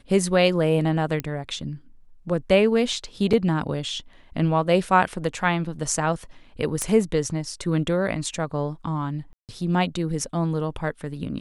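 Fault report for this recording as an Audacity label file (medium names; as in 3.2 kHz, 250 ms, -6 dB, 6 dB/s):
1.200000	1.200000	pop -12 dBFS
3.330000	3.330000	dropout 4.4 ms
6.820000	6.820000	pop -10 dBFS
9.330000	9.490000	dropout 158 ms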